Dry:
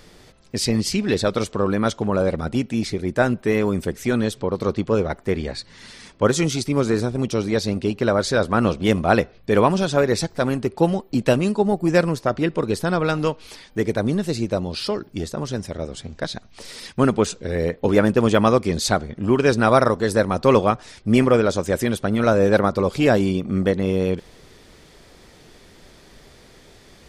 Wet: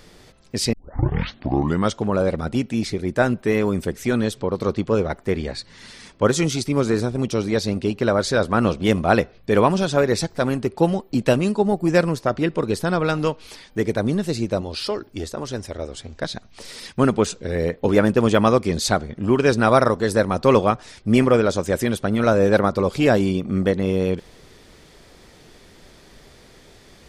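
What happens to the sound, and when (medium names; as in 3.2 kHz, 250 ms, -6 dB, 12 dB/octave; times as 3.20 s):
0.73 s: tape start 1.21 s
14.61–16.21 s: peaking EQ 170 Hz -10.5 dB 0.62 oct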